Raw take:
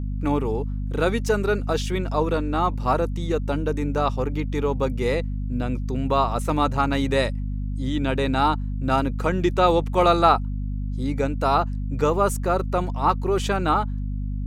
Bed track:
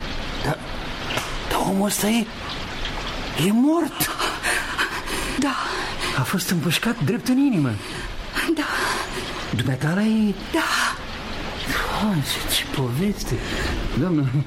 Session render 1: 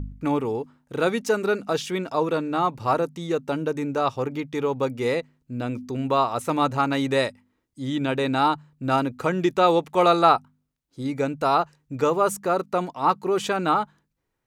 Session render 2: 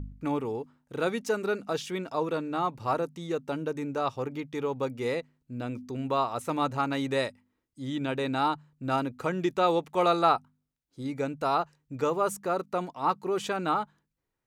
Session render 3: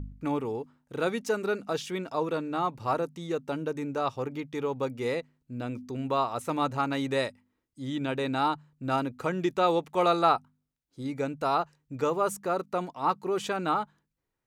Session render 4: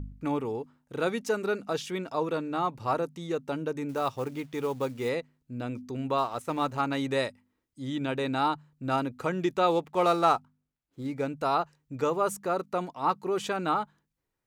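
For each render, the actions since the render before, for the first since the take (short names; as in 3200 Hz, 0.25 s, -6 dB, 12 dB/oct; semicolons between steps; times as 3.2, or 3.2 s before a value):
de-hum 50 Hz, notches 5
gain -6 dB
nothing audible
3.89–5.09 companded quantiser 6-bit; 6.18–6.8 G.711 law mismatch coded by A; 9.71–11.27 median filter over 9 samples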